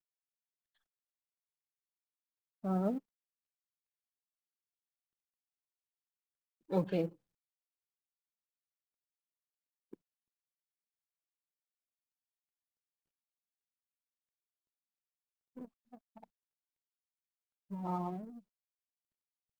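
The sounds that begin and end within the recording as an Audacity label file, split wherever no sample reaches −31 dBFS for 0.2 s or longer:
2.650000	2.970000	sound
6.720000	7.060000	sound
17.860000	18.090000	sound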